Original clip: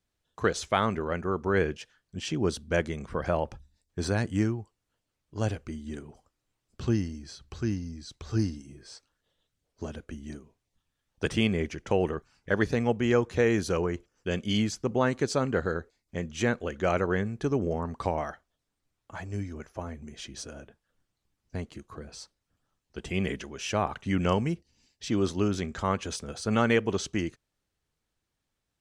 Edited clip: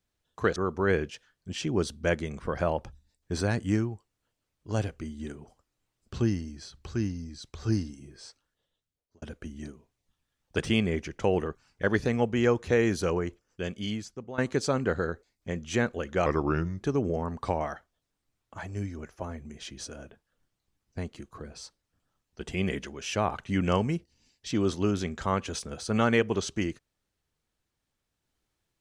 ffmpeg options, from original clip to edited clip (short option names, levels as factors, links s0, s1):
-filter_complex "[0:a]asplit=6[s0][s1][s2][s3][s4][s5];[s0]atrim=end=0.562[s6];[s1]atrim=start=1.228:end=9.89,asetpts=PTS-STARTPTS,afade=t=out:st=7.682:d=0.98[s7];[s2]atrim=start=9.89:end=15.05,asetpts=PTS-STARTPTS,afade=t=in:d=0.004:c=hsin,afade=t=out:st=3.94:d=1.22:silence=0.149624[s8];[s3]atrim=start=15.05:end=16.934,asetpts=PTS-STARTPTS,afade=t=in:d=0.004:c=hsin:silence=0.149624[s9];[s4]atrim=start=16.93:end=17.38,asetpts=PTS-STARTPTS,asetrate=36162,aresample=44100,atrim=end_sample=24201,asetpts=PTS-STARTPTS[s10];[s5]atrim=start=17.376[s11];[s7][s8][s9]concat=n=3:v=0:a=1[s12];[s6][s12]acrossfade=d=0.004:c1=hsin:c2=hsin[s13];[s13][s10]acrossfade=d=0.004:c1=hsin:c2=hsin[s14];[s14][s11]acrossfade=d=0.004:c1=hsin:c2=hsin"